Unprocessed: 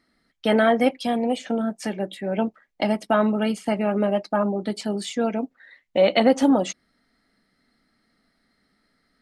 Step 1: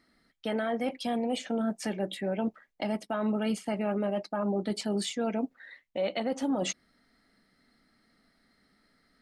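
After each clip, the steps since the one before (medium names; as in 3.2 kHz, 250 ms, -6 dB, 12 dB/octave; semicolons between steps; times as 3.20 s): reverse; compression 12:1, threshold -25 dBFS, peak gain reduction 14 dB; reverse; peak limiter -21 dBFS, peak gain reduction 6 dB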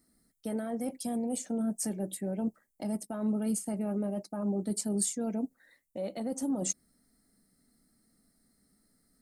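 FFT filter 200 Hz 0 dB, 3.1 kHz -17 dB, 8.6 kHz +12 dB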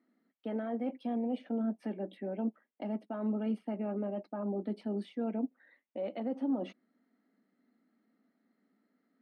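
elliptic band-pass 230–3000 Hz, stop band 40 dB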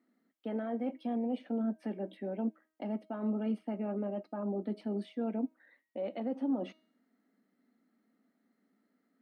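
de-hum 315.9 Hz, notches 38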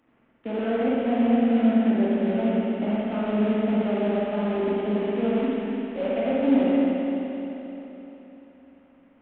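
CVSD coder 16 kbps; spring tank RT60 3.6 s, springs 43/58 ms, chirp 60 ms, DRR -6.5 dB; trim +6 dB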